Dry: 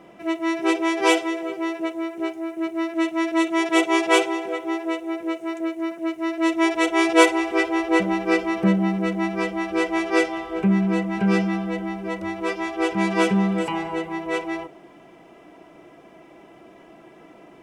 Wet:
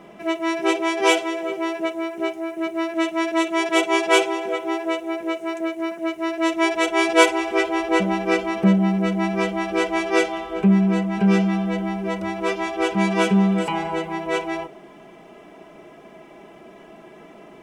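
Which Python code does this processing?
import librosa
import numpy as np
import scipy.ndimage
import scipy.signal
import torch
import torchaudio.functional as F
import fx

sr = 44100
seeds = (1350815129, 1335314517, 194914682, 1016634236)

p1 = x + 0.39 * np.pad(x, (int(4.8 * sr / 1000.0), 0))[:len(x)]
p2 = fx.rider(p1, sr, range_db=3, speed_s=0.5)
p3 = p1 + (p2 * 10.0 ** (-3.0 / 20.0))
y = p3 * 10.0 ** (-3.0 / 20.0)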